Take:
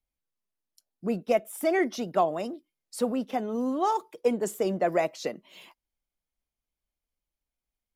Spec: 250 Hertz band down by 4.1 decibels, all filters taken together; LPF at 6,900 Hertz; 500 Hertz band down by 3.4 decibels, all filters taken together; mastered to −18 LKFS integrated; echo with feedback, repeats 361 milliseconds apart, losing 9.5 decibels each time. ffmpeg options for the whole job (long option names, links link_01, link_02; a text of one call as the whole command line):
ffmpeg -i in.wav -af "lowpass=6900,equalizer=frequency=250:width_type=o:gain=-4,equalizer=frequency=500:width_type=o:gain=-3.5,aecho=1:1:361|722|1083|1444:0.335|0.111|0.0365|0.012,volume=13.5dB" out.wav